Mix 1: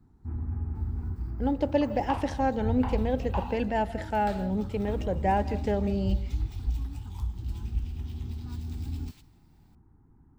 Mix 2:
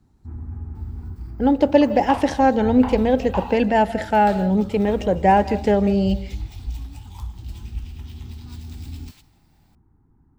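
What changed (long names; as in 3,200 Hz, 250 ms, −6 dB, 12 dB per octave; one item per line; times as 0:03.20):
speech +10.5 dB
second sound +6.5 dB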